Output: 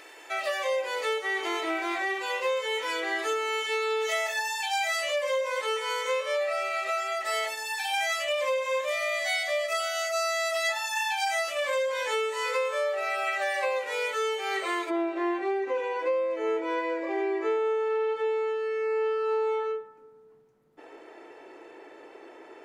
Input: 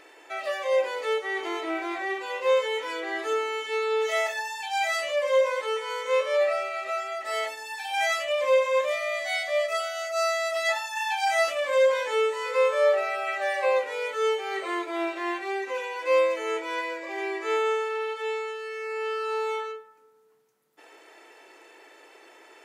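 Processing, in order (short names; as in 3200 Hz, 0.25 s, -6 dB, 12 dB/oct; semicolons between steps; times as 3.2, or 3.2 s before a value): tilt +1.5 dB/oct, from 14.89 s -4 dB/oct; compressor 12:1, threshold -27 dBFS, peak gain reduction 13 dB; gain +2.5 dB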